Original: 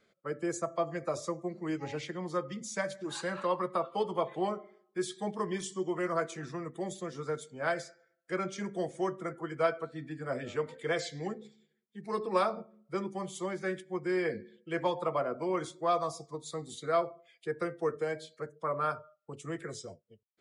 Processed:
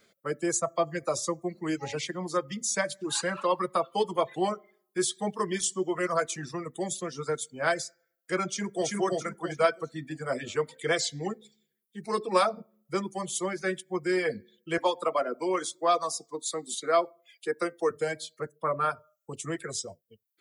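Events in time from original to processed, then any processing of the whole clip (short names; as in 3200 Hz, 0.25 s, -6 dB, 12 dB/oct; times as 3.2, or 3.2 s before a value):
8.48–8.89 echo throw 0.33 s, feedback 35%, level -0.5 dB
14.78–17.91 HPF 210 Hz 24 dB/oct
18.56–18.97 bell 6300 Hz -15 dB
whole clip: reverb removal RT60 0.95 s; high shelf 4500 Hz +12 dB; gain +4.5 dB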